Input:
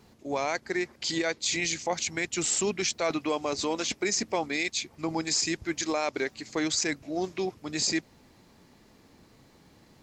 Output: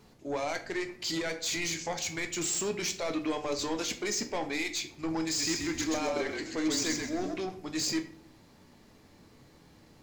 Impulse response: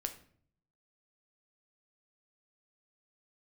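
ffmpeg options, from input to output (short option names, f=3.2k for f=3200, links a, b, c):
-filter_complex "[0:a]asoftclip=type=tanh:threshold=-26dB,asettb=1/sr,asplit=3[a][b][c];[a]atrim=end=5.244[d];[b]atrim=start=5.24:end=7.34,asetpts=PTS-STARTPTS,afade=t=in:d=0.004:c=qsin,afade=t=out:st=2.096:d=0.004:c=qsin,asplit=5[e][f][g][h][i];[f]adelay=130,afreqshift=-37,volume=-3.5dB[j];[g]adelay=260,afreqshift=-74,volume=-13.7dB[k];[h]adelay=390,afreqshift=-111,volume=-23.8dB[l];[i]adelay=520,afreqshift=-148,volume=-34dB[m];[e][j][k][l][m]amix=inputs=5:normalize=0,atrim=end_sample=92610[n];[c]atrim=start=7.336[o];[d][n]acrossfade=d=0.004:c1=hsin:c2=qsin[p];[p][o]acrossfade=d=0.004:c1=qsin:c2=hsin[q];[1:a]atrim=start_sample=2205[r];[q][r]afir=irnorm=-1:irlink=0"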